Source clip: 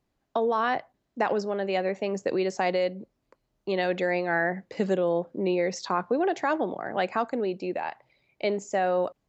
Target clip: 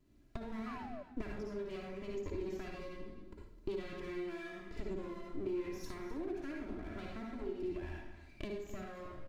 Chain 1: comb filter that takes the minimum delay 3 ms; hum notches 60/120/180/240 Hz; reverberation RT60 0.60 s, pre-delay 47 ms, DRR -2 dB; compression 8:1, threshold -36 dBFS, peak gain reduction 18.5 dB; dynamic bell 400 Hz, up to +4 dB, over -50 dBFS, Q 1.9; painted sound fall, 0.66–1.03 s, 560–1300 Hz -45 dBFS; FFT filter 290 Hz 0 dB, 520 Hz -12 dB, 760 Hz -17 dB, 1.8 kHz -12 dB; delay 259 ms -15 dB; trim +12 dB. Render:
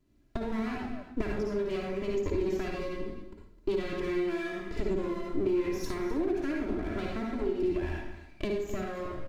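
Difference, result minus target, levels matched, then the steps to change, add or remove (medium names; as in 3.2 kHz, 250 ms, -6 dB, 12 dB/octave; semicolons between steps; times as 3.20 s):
compression: peak gain reduction -9.5 dB
change: compression 8:1, threshold -47 dBFS, peak gain reduction 28 dB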